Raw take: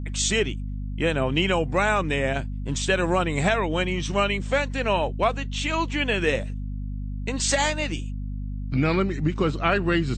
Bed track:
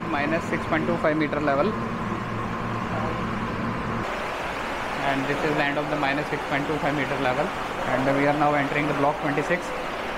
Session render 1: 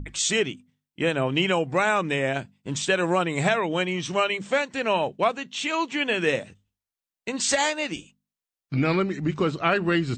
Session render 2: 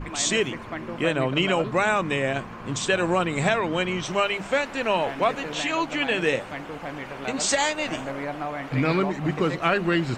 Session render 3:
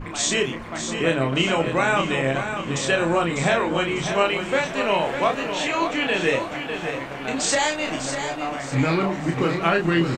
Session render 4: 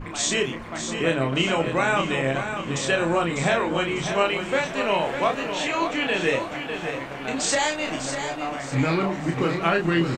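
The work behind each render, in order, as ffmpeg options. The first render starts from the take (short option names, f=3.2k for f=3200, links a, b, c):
-af "bandreject=f=50:t=h:w=6,bandreject=f=100:t=h:w=6,bandreject=f=150:t=h:w=6,bandreject=f=200:t=h:w=6,bandreject=f=250:t=h:w=6"
-filter_complex "[1:a]volume=-10dB[a];[0:a][a]amix=inputs=2:normalize=0"
-filter_complex "[0:a]asplit=2[a][b];[b]adelay=30,volume=-4dB[c];[a][c]amix=inputs=2:normalize=0,aecho=1:1:599|1198|1797|2396:0.398|0.155|0.0606|0.0236"
-af "volume=-1.5dB"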